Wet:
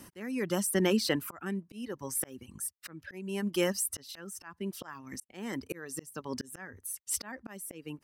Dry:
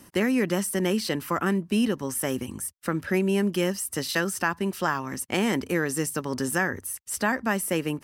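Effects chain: reverb removal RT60 1.3 s; auto swell 0.59 s

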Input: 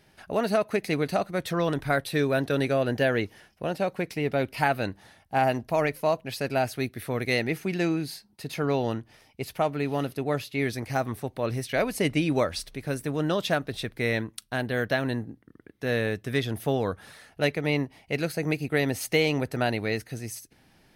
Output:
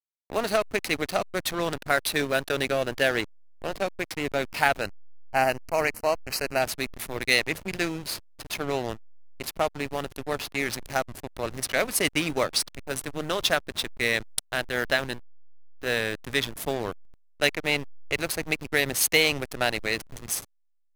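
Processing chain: tilt +3.5 dB/oct; backlash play -25 dBFS; 4.81–6.62 Butterworth band-stop 3500 Hz, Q 3.1; gain +2.5 dB

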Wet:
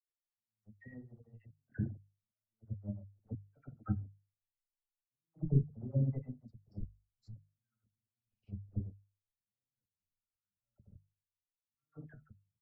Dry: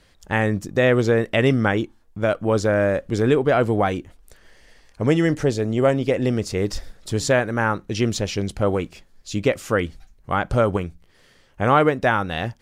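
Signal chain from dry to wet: passive tone stack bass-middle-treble 6-0-2; spectral gate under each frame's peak -10 dB strong; resonator 210 Hz, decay 0.41 s, harmonics all, mix 40%; shoebox room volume 800 m³, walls furnished, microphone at 2.8 m; auto swell 0.337 s; gate -37 dBFS, range -58 dB; air absorption 490 m; notches 50/100/150 Hz; comb 1.5 ms, depth 38%; dispersion lows, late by 67 ms, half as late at 1100 Hz; gain +11 dB

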